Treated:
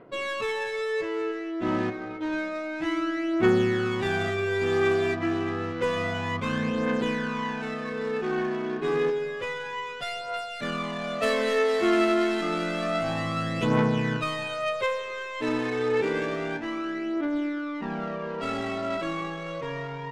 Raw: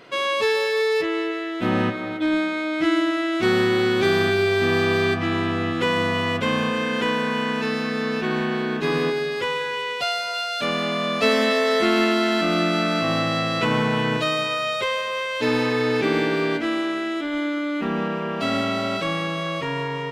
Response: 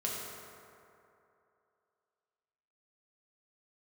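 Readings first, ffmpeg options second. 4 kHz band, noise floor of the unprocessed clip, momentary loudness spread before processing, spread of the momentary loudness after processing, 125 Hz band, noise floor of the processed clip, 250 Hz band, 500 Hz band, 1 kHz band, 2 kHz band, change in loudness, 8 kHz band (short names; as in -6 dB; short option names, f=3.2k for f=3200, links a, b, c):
-10.5 dB, -28 dBFS, 6 LU, 9 LU, -4.5 dB, -35 dBFS, -5.0 dB, -4.5 dB, -6.0 dB, -7.0 dB, -5.5 dB, -7.0 dB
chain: -af "adynamicsmooth=sensitivity=1.5:basefreq=1.3k,aphaser=in_gain=1:out_gain=1:delay=3.1:decay=0.52:speed=0.29:type=triangular,volume=-6dB"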